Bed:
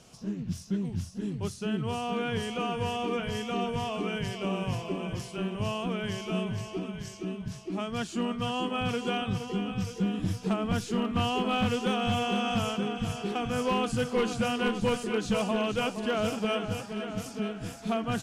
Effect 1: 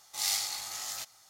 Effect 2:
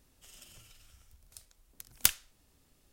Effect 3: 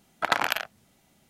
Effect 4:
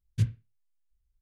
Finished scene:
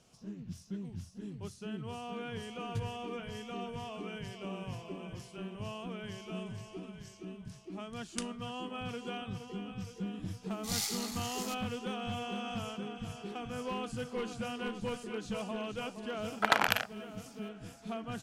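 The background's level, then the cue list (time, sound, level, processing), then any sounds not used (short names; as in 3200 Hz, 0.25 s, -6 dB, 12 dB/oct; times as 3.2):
bed -10 dB
2.57 add 4 -3 dB + compressor, threshold -28 dBFS
6.13 add 2 -13.5 dB + downsampling 22050 Hz
10.5 add 1 -5 dB + vibrato 3.4 Hz 35 cents
16.2 add 3 -2.5 dB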